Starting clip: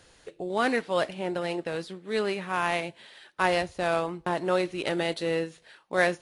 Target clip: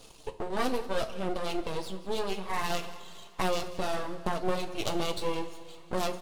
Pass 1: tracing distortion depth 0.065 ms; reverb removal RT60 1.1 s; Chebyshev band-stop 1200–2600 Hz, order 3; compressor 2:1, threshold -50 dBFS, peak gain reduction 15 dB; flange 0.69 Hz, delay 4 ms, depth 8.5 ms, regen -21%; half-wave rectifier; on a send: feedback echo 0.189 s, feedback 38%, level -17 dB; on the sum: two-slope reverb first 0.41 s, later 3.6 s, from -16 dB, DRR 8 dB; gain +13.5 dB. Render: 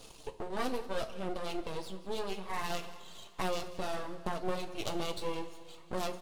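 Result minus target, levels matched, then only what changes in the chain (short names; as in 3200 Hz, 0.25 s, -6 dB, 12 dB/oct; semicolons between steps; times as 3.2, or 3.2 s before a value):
compressor: peak gain reduction +5 dB
change: compressor 2:1, threshold -40 dBFS, peak gain reduction 10 dB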